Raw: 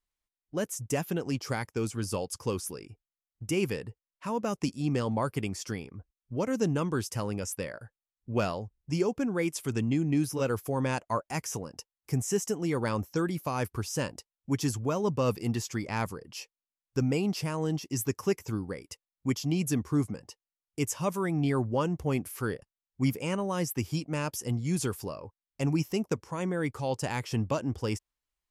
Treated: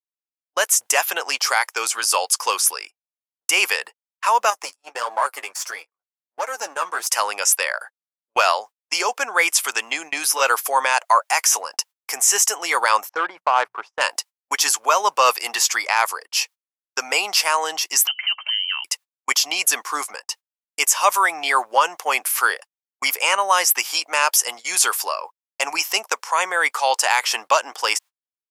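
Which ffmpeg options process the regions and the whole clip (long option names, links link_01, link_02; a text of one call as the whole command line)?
ffmpeg -i in.wav -filter_complex "[0:a]asettb=1/sr,asplit=3[link_01][link_02][link_03];[link_01]atrim=end=4.504[link_04];[link_02]atrim=start=4.5:end=7.07,asetpts=PTS-STARTPTS,afade=type=in:duration=0.004:curve=qsin,afade=type=out:start_time=2.566:duration=0.004:curve=qsin,aeval=exprs='if(lt(val(0),0),0.447*val(0),val(0))':channel_layout=same,equalizer=frequency=3300:width_type=o:width=1.4:gain=-7,flanger=delay=6:depth=6.1:regen=28:speed=1.5:shape=sinusoidal[link_05];[link_03]atrim=start=7.066[link_06];[link_04][link_05]acrossfade=duration=0.004:curve1=hsin:curve2=qsin[link_07];[link_07][link_06]acrossfade=duration=0.004:curve1=qsin:curve2=hsin,asettb=1/sr,asplit=3[link_08][link_09][link_10];[link_08]atrim=end=13.094[link_11];[link_09]atrim=start=13.09:end=14.01,asetpts=PTS-STARTPTS,afade=type=in:duration=0.004:curve=qsin,afade=type=out:start_time=0.916:duration=0.004:curve=qsin,highshelf=frequency=5200:gain=5,bandreject=frequency=60:width_type=h:width=6,bandreject=frequency=120:width_type=h:width=6,bandreject=frequency=180:width_type=h:width=6,adynamicsmooth=sensitivity=1:basefreq=760[link_12];[link_10]atrim=start=14.006[link_13];[link_11][link_12]acrossfade=duration=0.004:curve1=hsin:curve2=qsin[link_14];[link_14][link_13]acrossfade=duration=0.004:curve1=qsin:curve2=hsin,asettb=1/sr,asplit=3[link_15][link_16][link_17];[link_15]atrim=end=18.074[link_18];[link_16]atrim=start=18.07:end=18.84,asetpts=PTS-STARTPTS,afade=type=in:duration=0.004:curve=qsin,afade=type=out:start_time=0.766:duration=0.004:curve=qsin,bandreject=frequency=229.6:width_type=h:width=4,bandreject=frequency=459.2:width_type=h:width=4,acompressor=threshold=-42dB:ratio=4:attack=3.2:release=140:knee=1:detection=peak,lowpass=frequency=2700:width_type=q:width=0.5098,lowpass=frequency=2700:width_type=q:width=0.6013,lowpass=frequency=2700:width_type=q:width=0.9,lowpass=frequency=2700:width_type=q:width=2.563,afreqshift=-3200[link_19];[link_17]atrim=start=18.836[link_20];[link_18][link_19]acrossfade=duration=0.004:curve1=hsin:curve2=qsin[link_21];[link_21][link_20]acrossfade=duration=0.004:curve1=qsin:curve2=hsin,highpass=frequency=790:width=0.5412,highpass=frequency=790:width=1.3066,agate=range=-39dB:threshold=-55dB:ratio=16:detection=peak,alimiter=level_in=24dB:limit=-1dB:release=50:level=0:latency=1,volume=-3.5dB" out.wav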